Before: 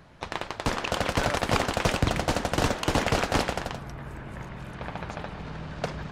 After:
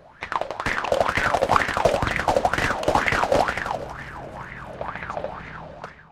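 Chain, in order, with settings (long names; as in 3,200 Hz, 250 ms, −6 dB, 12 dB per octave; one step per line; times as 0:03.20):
fade-out on the ending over 0.70 s
echo with a time of its own for lows and highs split 340 Hz, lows 440 ms, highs 335 ms, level −15.5 dB
auto-filter bell 2.1 Hz 540–2,000 Hz +17 dB
level −2.5 dB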